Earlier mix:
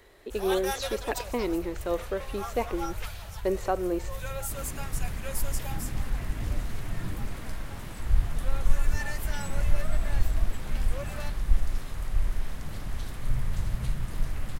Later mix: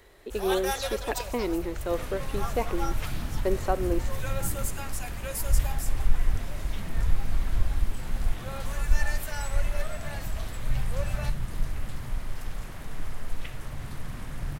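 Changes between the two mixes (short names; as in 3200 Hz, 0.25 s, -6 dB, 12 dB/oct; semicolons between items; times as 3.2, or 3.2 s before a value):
first sound: send on; second sound: entry -2.60 s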